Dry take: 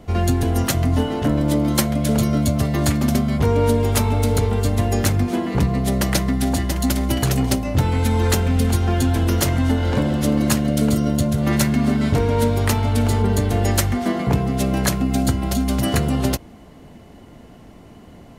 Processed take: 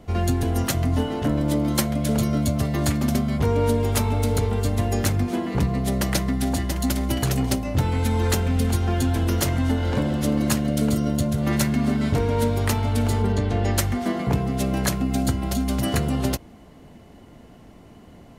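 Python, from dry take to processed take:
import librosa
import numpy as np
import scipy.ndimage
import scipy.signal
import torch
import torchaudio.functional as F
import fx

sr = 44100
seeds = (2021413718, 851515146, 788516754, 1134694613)

y = fx.lowpass(x, sr, hz=4900.0, slope=12, at=(13.32, 13.78))
y = F.gain(torch.from_numpy(y), -3.5).numpy()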